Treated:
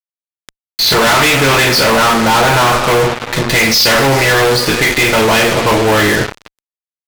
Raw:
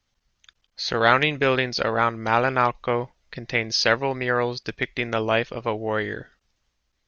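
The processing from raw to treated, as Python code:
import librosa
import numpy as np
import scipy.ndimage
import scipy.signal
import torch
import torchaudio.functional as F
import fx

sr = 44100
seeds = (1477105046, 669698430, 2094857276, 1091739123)

y = fx.rev_double_slope(x, sr, seeds[0], early_s=0.35, late_s=3.1, knee_db=-22, drr_db=-2.5)
y = fx.fuzz(y, sr, gain_db=37.0, gate_db=-34.0)
y = y * librosa.db_to_amplitude(4.5)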